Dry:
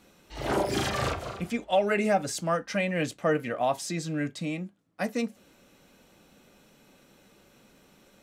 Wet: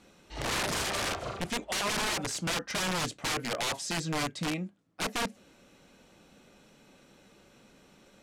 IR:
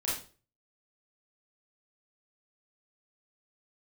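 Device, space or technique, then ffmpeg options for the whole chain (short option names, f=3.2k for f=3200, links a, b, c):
overflowing digital effects unit: -filter_complex "[0:a]asettb=1/sr,asplit=3[a][b][c];[a]atrim=end=0.814[d];[b]atrim=start=0.81:end=1.22,asetpts=PTS-STARTPTS,afade=t=in:d=0.004:c=qsin,afade=t=out:st=0.406:d=0.004:c=qsin,bass=f=250:g=-8,treble=f=4k:g=-1[e];[c]atrim=start=1.216[f];[d][e]acrossfade=d=0.004:c1=hsin:c2=qsin[g];[g][f]acrossfade=d=0.004:c1=qsin:c2=hsin,aeval=exprs='(mod(17.8*val(0)+1,2)-1)/17.8':c=same,lowpass=9.5k"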